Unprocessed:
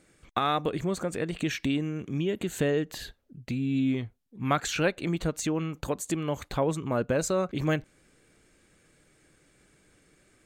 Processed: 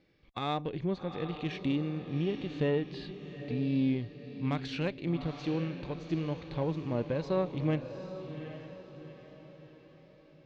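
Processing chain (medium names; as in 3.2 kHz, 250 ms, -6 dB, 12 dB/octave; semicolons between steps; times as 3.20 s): steep low-pass 5.1 kHz 48 dB/octave; peaking EQ 1.4 kHz -9 dB 0.51 oct; band-stop 670 Hz, Q 12; echo that smears into a reverb 788 ms, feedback 46%, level -10 dB; Chebyshev shaper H 3 -21 dB, 6 -32 dB, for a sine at -13 dBFS; harmonic-percussive split percussive -8 dB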